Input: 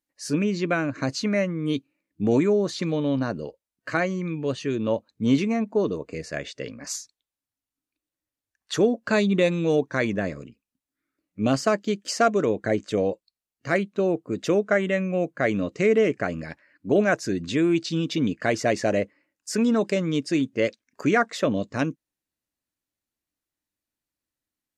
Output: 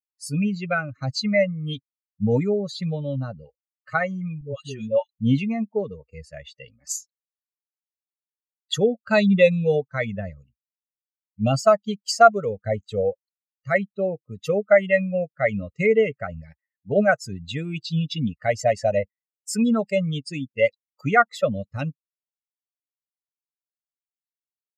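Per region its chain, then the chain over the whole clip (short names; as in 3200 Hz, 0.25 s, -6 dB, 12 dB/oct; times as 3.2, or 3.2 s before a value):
4.41–5.09 HPF 100 Hz + high shelf 8400 Hz +8 dB + dispersion highs, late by 0.104 s, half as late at 670 Hz
whole clip: per-bin expansion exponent 2; notch 5700 Hz, Q 5.8; comb 1.5 ms, depth 93%; gain +5 dB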